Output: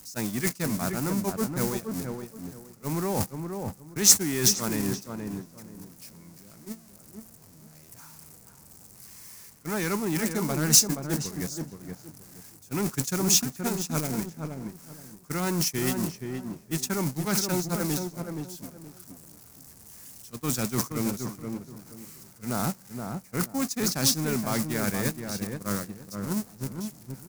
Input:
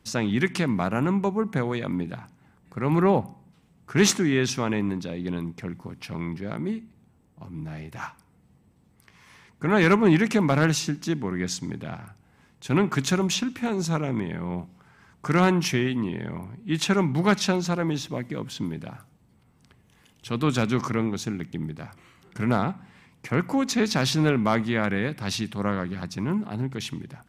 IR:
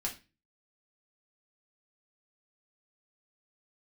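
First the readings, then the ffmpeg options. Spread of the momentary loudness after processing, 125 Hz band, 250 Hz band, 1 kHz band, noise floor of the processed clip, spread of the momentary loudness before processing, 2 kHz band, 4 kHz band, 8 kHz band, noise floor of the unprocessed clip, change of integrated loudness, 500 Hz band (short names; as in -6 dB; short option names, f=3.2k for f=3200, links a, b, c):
23 LU, -5.5 dB, -5.5 dB, -7.0 dB, -53 dBFS, 16 LU, -7.5 dB, +0.5 dB, +8.5 dB, -61 dBFS, -2.0 dB, -6.5 dB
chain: -filter_complex "[0:a]aeval=exprs='val(0)+0.5*0.0473*sgn(val(0))':c=same,agate=range=-29dB:threshold=-21dB:ratio=16:detection=peak,areverse,acompressor=threshold=-29dB:ratio=12,areverse,aexciter=amount=3.9:drive=8.4:freq=4.8k,asplit=2[a][b];[b]adelay=473,lowpass=f=1.2k:p=1,volume=-5dB,asplit=2[c][d];[d]adelay=473,lowpass=f=1.2k:p=1,volume=0.26,asplit=2[e][f];[f]adelay=473,lowpass=f=1.2k:p=1,volume=0.26[g];[c][e][g]amix=inputs=3:normalize=0[h];[a][h]amix=inputs=2:normalize=0,volume=3.5dB"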